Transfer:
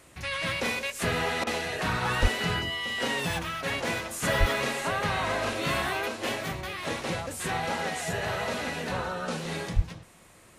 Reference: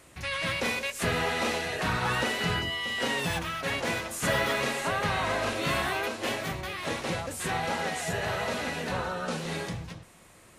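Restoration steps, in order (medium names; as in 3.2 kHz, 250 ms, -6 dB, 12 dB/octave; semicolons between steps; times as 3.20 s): 2.21–2.33 s: high-pass 140 Hz 24 dB/octave; 4.39–4.51 s: high-pass 140 Hz 24 dB/octave; 9.75–9.87 s: high-pass 140 Hz 24 dB/octave; interpolate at 1.44 s, 27 ms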